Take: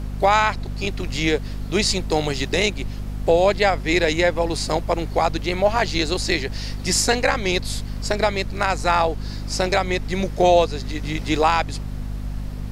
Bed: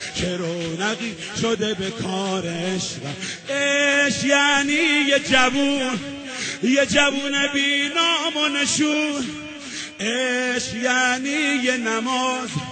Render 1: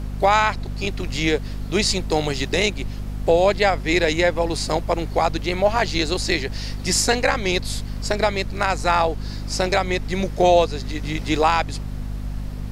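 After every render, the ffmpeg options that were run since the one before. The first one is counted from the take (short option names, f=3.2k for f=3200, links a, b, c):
-af anull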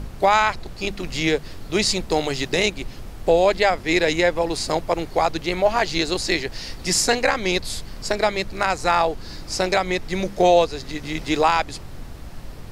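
-af "bandreject=f=50:t=h:w=4,bandreject=f=100:t=h:w=4,bandreject=f=150:t=h:w=4,bandreject=f=200:t=h:w=4,bandreject=f=250:t=h:w=4"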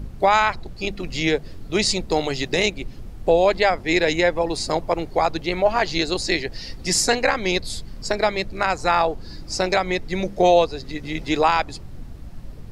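-af "afftdn=nr=9:nf=-37"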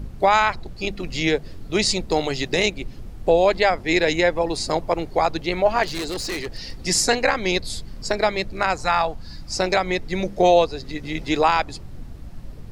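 -filter_complex "[0:a]asettb=1/sr,asplit=3[a][b][c];[a]atrim=end=5.834[d];[b]atrim=start=5.83:end=6.82,asetpts=PTS-STARTPTS,afade=t=in:d=0.004:c=qsin,afade=t=out:st=0.986:d=0.004:c=qsin,volume=24.5dB,asoftclip=hard,volume=-24.5dB[e];[c]atrim=start=6.816[f];[d][e]acrossfade=d=0.004:c1=hsin:c2=qsin[g];[g][f]acrossfade=d=0.004:c1=qsin:c2=hsin,asettb=1/sr,asplit=3[h][i][j];[h]atrim=end=8.824[k];[i]atrim=start=8.82:end=9.56,asetpts=PTS-STARTPTS,afade=t=in:d=0.004:c=qsin,afade=t=out:st=0.736:d=0.004:c=qsin,equalizer=f=390:t=o:w=0.77:g=-12[l];[j]atrim=start=9.556[m];[k][l]acrossfade=d=0.004:c1=hsin:c2=qsin[n];[n][m]acrossfade=d=0.004:c1=qsin:c2=hsin"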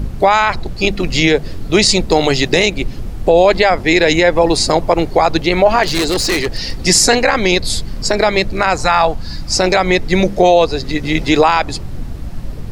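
-af "alimiter=level_in=12dB:limit=-1dB:release=50:level=0:latency=1"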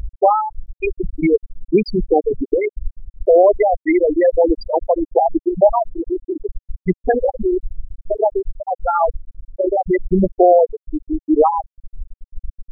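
-af "afftfilt=real='re*gte(hypot(re,im),1.41)':imag='im*gte(hypot(re,im),1.41)':win_size=1024:overlap=0.75,adynamicequalizer=threshold=0.0282:dfrequency=860:dqfactor=4.3:tfrequency=860:tqfactor=4.3:attack=5:release=100:ratio=0.375:range=3:mode=cutabove:tftype=bell"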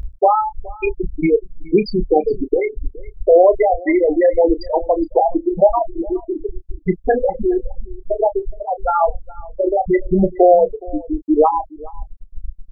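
-filter_complex "[0:a]asplit=2[a][b];[b]adelay=30,volume=-12dB[c];[a][c]amix=inputs=2:normalize=0,aecho=1:1:419:0.0841"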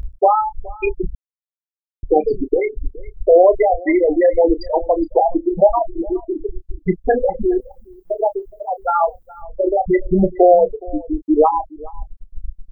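-filter_complex "[0:a]asettb=1/sr,asplit=3[a][b][c];[a]atrim=end=7.604[d];[b]atrim=start=7.6:end=9.42,asetpts=PTS-STARTPTS,afade=t=in:d=0.004:c=qsin,afade=t=out:st=1.816:d=0.004:c=qsin,aemphasis=mode=production:type=riaa[e];[c]atrim=start=9.416[f];[d][e]acrossfade=d=0.004:c1=hsin:c2=qsin[g];[g][f]acrossfade=d=0.004:c1=qsin:c2=hsin,asplit=3[h][i][j];[h]atrim=end=1.15,asetpts=PTS-STARTPTS,afade=t=out:st=1.146:d=0.004:c=hsin[k];[i]atrim=start=1.15:end=2.03,asetpts=PTS-STARTPTS,volume=0[l];[j]atrim=start=2.03,asetpts=PTS-STARTPTS,afade=t=in:d=0.004:c=hsin[m];[k][l][m]concat=n=3:v=0:a=1"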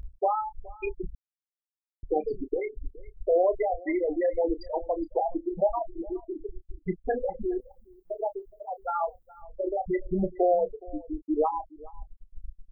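-af "volume=-12.5dB"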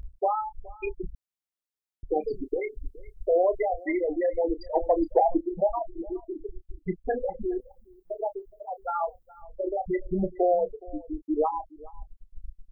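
-filter_complex "[0:a]asettb=1/sr,asplit=3[a][b][c];[a]atrim=end=2.214[d];[b]atrim=start=2.21:end=4.07,asetpts=PTS-STARTPTS,afade=t=in:d=0.004:c=qsin,afade=t=out:st=1.856:d=0.004:c=qsin,highshelf=f=3.1k:g=9.5[e];[c]atrim=start=4.066[f];[d][e]acrossfade=d=0.004:c1=hsin:c2=qsin[g];[g][f]acrossfade=d=0.004:c1=qsin:c2=hsin,asettb=1/sr,asplit=3[h][i][j];[h]atrim=end=4.754[k];[i]atrim=start=4.75:end=5.41,asetpts=PTS-STARTPTS,afade=t=in:d=0.004:c=qsin,afade=t=out:st=0.656:d=0.004:c=qsin,acontrast=58[l];[j]atrim=start=5.406[m];[k][l]acrossfade=d=0.004:c1=hsin:c2=qsin[n];[n][m]acrossfade=d=0.004:c1=qsin:c2=hsin"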